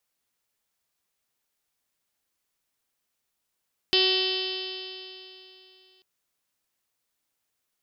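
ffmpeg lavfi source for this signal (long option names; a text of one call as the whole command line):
ffmpeg -f lavfi -i "aevalsrc='0.0631*pow(10,-3*t/3)*sin(2*PI*373.17*t)+0.015*pow(10,-3*t/3)*sin(2*PI*747.34*t)+0.00891*pow(10,-3*t/3)*sin(2*PI*1123.52*t)+0.00631*pow(10,-3*t/3)*sin(2*PI*1502.7*t)+0.0158*pow(10,-3*t/3)*sin(2*PI*1885.86*t)+0.0075*pow(10,-3*t/3)*sin(2*PI*2273.97*t)+0.0398*pow(10,-3*t/3)*sin(2*PI*2667.95*t)+0.0841*pow(10,-3*t/3)*sin(2*PI*3068.74*t)+0.0422*pow(10,-3*t/3)*sin(2*PI*3477.21*t)+0.0335*pow(10,-3*t/3)*sin(2*PI*3894.23*t)+0.0398*pow(10,-3*t/3)*sin(2*PI*4320.64*t)+0.0447*pow(10,-3*t/3)*sin(2*PI*4757.21*t)+0.0282*pow(10,-3*t/3)*sin(2*PI*5204.72*t)':duration=2.09:sample_rate=44100" out.wav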